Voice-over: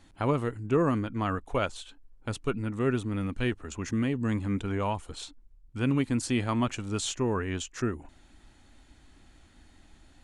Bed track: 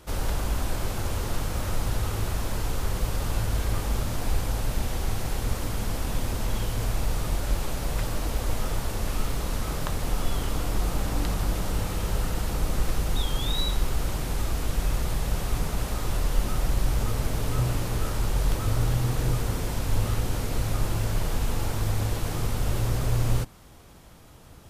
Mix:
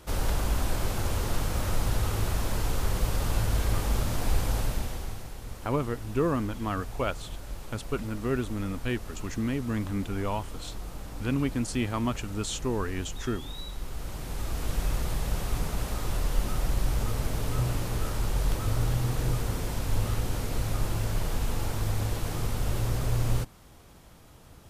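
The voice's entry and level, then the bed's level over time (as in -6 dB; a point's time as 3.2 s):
5.45 s, -1.5 dB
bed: 4.6 s 0 dB
5.33 s -12.5 dB
13.69 s -12.5 dB
14.71 s -2.5 dB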